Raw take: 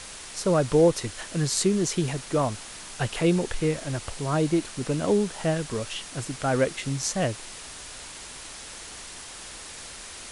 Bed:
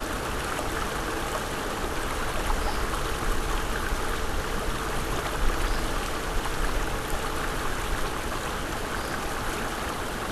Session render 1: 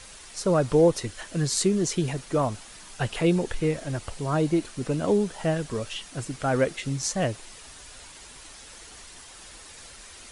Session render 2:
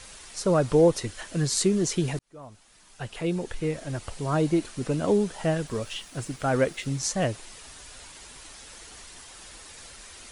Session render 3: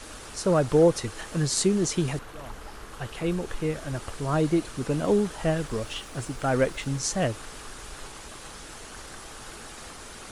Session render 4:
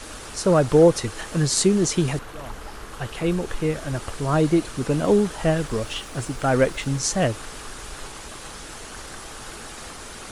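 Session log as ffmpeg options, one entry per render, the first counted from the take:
-af "afftdn=nr=7:nf=-41"
-filter_complex "[0:a]asettb=1/sr,asplit=3[a][b][c];[a]atrim=end=5.674[d];[b]atrim=start=5.67:end=6.99,asetpts=PTS-STARTPTS,afade=t=in:d=0.004:c=qsin,afade=t=out:st=1.316:d=0.004:c=qsin,aeval=exprs='sgn(val(0))*max(abs(val(0))-0.0015,0)':c=same[e];[c]atrim=start=6.986[f];[d][e]acrossfade=d=0.004:c1=hsin:c2=qsin[g];[g][f]acrossfade=d=0.004:c1=qsin:c2=hsin,asplit=2[h][i];[h]atrim=end=2.19,asetpts=PTS-STARTPTS,afade=t=out:st=2.186:d=0.004:c=hsin[j];[i]atrim=start=2.19,asetpts=PTS-STARTPTS,afade=t=in:d=2.15[k];[j][k]concat=n=2:v=0:a=1"
-filter_complex "[1:a]volume=-14.5dB[a];[0:a][a]amix=inputs=2:normalize=0"
-af "volume=4.5dB"

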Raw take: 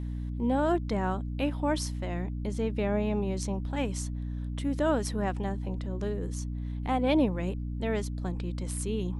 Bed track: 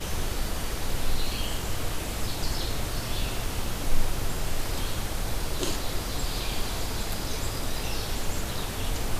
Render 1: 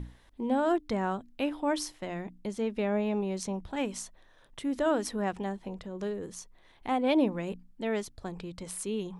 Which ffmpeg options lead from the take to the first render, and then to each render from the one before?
-af "bandreject=f=60:t=h:w=6,bandreject=f=120:t=h:w=6,bandreject=f=180:t=h:w=6,bandreject=f=240:t=h:w=6,bandreject=f=300:t=h:w=6"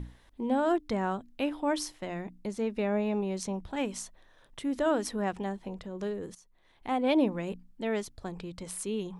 -filter_complex "[0:a]asettb=1/sr,asplit=3[a][b][c];[a]atrim=end=2.094[d];[b]atrim=start=2.09:end=3.23,asetpts=PTS-STARTPTS,afade=t=in:d=0.004:c=qsin,afade=t=out:st=1.136:d=0.004:c=qsin,bandreject=f=3.2k:w=12[e];[c]atrim=start=3.226[f];[d][e]acrossfade=d=0.004:c1=hsin:c2=qsin[g];[g][f]acrossfade=d=0.004:c1=qsin:c2=hsin,asplit=2[h][i];[h]atrim=end=6.35,asetpts=PTS-STARTPTS,afade=t=out:st=6.346:d=0.004:c=hsin:silence=0.141254[j];[i]atrim=start=6.35,asetpts=PTS-STARTPTS,afade=t=in:d=0.67:silence=0.141254[k];[j][k]concat=n=2:v=0:a=1"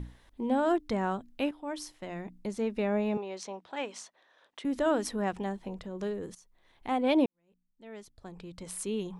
-filter_complex "[0:a]asettb=1/sr,asplit=3[a][b][c];[a]atrim=end=3.174[d];[b]atrim=start=3.17:end=4.65,asetpts=PTS-STARTPTS,afade=t=in:d=0.004:c=qsin,afade=t=out:st=1.476:d=0.004:c=qsin,highpass=460,lowpass=5.6k[e];[c]atrim=start=4.646[f];[d][e]acrossfade=d=0.004:c1=hsin:c2=qsin[g];[g][f]acrossfade=d=0.004:c1=qsin:c2=hsin,asplit=3[h][i][j];[h]atrim=end=1.51,asetpts=PTS-STARTPTS,afade=t=out:st=1.506:d=0.004:c=hsin:silence=0.237137[k];[i]atrim=start=1.51:end=7.26,asetpts=PTS-STARTPTS,afade=t=in:d=0.95:silence=0.237137,afade=t=out:st=5.746:d=0.004:c=hsin[l];[j]atrim=start=7.26,asetpts=PTS-STARTPTS,afade=t=in:d=1.56:c=qua[m];[k][l][m]concat=n=3:v=0:a=1"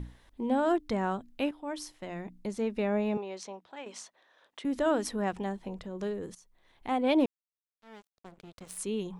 -filter_complex "[0:a]asettb=1/sr,asplit=3[a][b][c];[a]atrim=end=7.204[d];[b]atrim=start=7.2:end=8.78,asetpts=PTS-STARTPTS,afade=t=in:d=0.004:c=qsin,afade=t=out:st=1.576:d=0.004:c=qsin,aeval=exprs='sgn(val(0))*max(abs(val(0))-0.00447,0)':c=same[e];[c]atrim=start=8.776[f];[d][e]acrossfade=d=0.004:c1=hsin:c2=qsin[g];[g][f]acrossfade=d=0.004:c1=qsin:c2=hsin,asplit=2[h][i];[h]atrim=end=3.86,asetpts=PTS-STARTPTS,afade=t=out:st=3.1:d=0.76:c=qsin:silence=0.298538[j];[i]atrim=start=3.86,asetpts=PTS-STARTPTS,afade=t=in:d=0.004:c=hsin:silence=0.298538[k];[j][k]concat=n=2:v=0:a=1"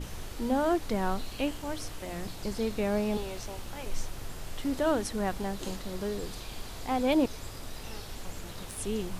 -filter_complex "[1:a]volume=-11dB[a];[0:a][a]amix=inputs=2:normalize=0"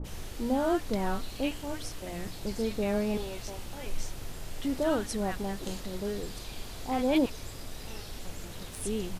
-filter_complex "[0:a]acrossover=split=1100[a][b];[b]adelay=40[c];[a][c]amix=inputs=2:normalize=0"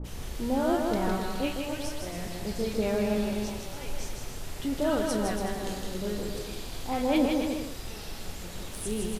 -filter_complex "[0:a]asplit=2[a][b];[b]adelay=33,volume=-10.5dB[c];[a][c]amix=inputs=2:normalize=0,aecho=1:1:160|280|370|437.5|488.1:0.631|0.398|0.251|0.158|0.1"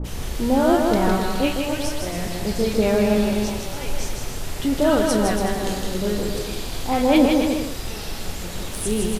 -af "volume=9dB"

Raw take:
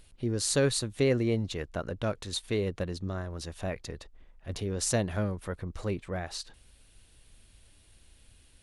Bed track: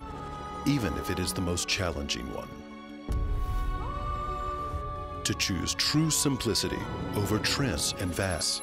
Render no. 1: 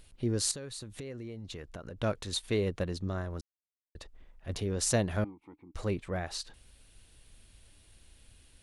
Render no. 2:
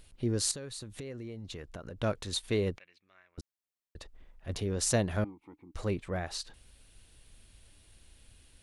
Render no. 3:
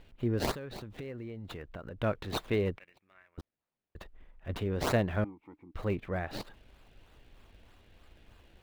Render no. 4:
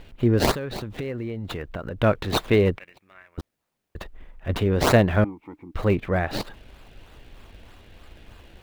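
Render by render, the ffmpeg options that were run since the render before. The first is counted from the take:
-filter_complex "[0:a]asettb=1/sr,asplit=3[a][b][c];[a]atrim=end=0.514[d];[b]atrim=start=0.51:end=1.99,asetpts=PTS-STARTPTS,afade=t=in:d=0.004:c=qsin,afade=t=out:st=1.476:d=0.004:c=qsin,acompressor=threshold=-38dB:ratio=12:attack=3.2:release=140:knee=1:detection=peak[e];[c]atrim=start=1.986[f];[d][e]acrossfade=d=0.004:c1=hsin:c2=qsin[g];[g][f]acrossfade=d=0.004:c1=qsin:c2=hsin,asettb=1/sr,asplit=3[h][i][j];[h]atrim=end=5.244[k];[i]atrim=start=5.24:end=5.75,asetpts=PTS-STARTPTS,afade=t=in:d=0.004:c=qsin,afade=t=out:st=0.506:d=0.004:c=qsin,asplit=3[l][m][n];[l]bandpass=f=300:t=q:w=8,volume=0dB[o];[m]bandpass=f=870:t=q:w=8,volume=-6dB[p];[n]bandpass=f=2.24k:t=q:w=8,volume=-9dB[q];[o][p][q]amix=inputs=3:normalize=0[r];[j]atrim=start=5.746[s];[k][r]acrossfade=d=0.004:c1=hsin:c2=qsin[t];[t][s]acrossfade=d=0.004:c1=qsin:c2=hsin,asplit=3[u][v][w];[u]atrim=end=3.41,asetpts=PTS-STARTPTS,afade=t=out:st=3.406:d=0.004:c=hsin[x];[v]atrim=start=3.41:end=3.95,asetpts=PTS-STARTPTS,volume=0[y];[w]atrim=start=3.95,asetpts=PTS-STARTPTS,afade=t=in:d=0.004:c=hsin[z];[x][y][z]concat=n=3:v=0:a=1"
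-filter_complex "[0:a]asettb=1/sr,asplit=3[a][b][c];[a]atrim=end=2.784[d];[b]atrim=start=2.78:end=3.38,asetpts=PTS-STARTPTS,afade=t=in:d=0.004:c=qsin,afade=t=out:st=0.596:d=0.004:c=qsin,bandpass=f=2.3k:t=q:w=8[e];[c]atrim=start=3.376[f];[d][e]acrossfade=d=0.004:c1=hsin:c2=qsin[g];[g][f]acrossfade=d=0.004:c1=qsin:c2=hsin"
-filter_complex "[0:a]acrossover=split=3000[a][b];[a]crystalizer=i=3:c=0[c];[b]acrusher=samples=28:mix=1:aa=0.000001:lfo=1:lforange=28:lforate=3.2[d];[c][d]amix=inputs=2:normalize=0"
-af "volume=11dB"

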